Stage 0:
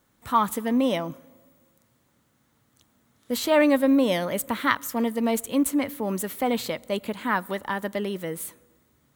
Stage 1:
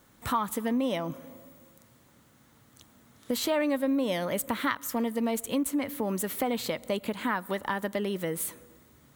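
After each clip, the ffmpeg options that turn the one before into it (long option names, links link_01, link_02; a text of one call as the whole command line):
ffmpeg -i in.wav -af "acompressor=threshold=-36dB:ratio=3,volume=6.5dB" out.wav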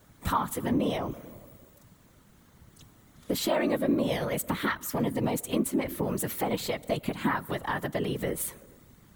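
ffmpeg -i in.wav -af "equalizer=frequency=100:width_type=o:width=0.47:gain=13,afftfilt=real='hypot(re,im)*cos(2*PI*random(0))':imag='hypot(re,im)*sin(2*PI*random(1))':win_size=512:overlap=0.75,volume=6dB" out.wav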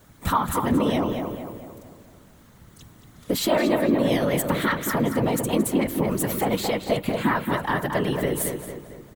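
ffmpeg -i in.wav -filter_complex "[0:a]asplit=2[link_01][link_02];[link_02]adelay=225,lowpass=frequency=2800:poles=1,volume=-5dB,asplit=2[link_03][link_04];[link_04]adelay=225,lowpass=frequency=2800:poles=1,volume=0.48,asplit=2[link_05][link_06];[link_06]adelay=225,lowpass=frequency=2800:poles=1,volume=0.48,asplit=2[link_07][link_08];[link_08]adelay=225,lowpass=frequency=2800:poles=1,volume=0.48,asplit=2[link_09][link_10];[link_10]adelay=225,lowpass=frequency=2800:poles=1,volume=0.48,asplit=2[link_11][link_12];[link_12]adelay=225,lowpass=frequency=2800:poles=1,volume=0.48[link_13];[link_01][link_03][link_05][link_07][link_09][link_11][link_13]amix=inputs=7:normalize=0,volume=5dB" out.wav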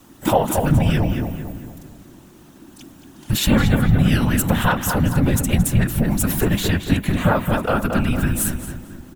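ffmpeg -i in.wav -af "afreqshift=-390,volume=5.5dB" out.wav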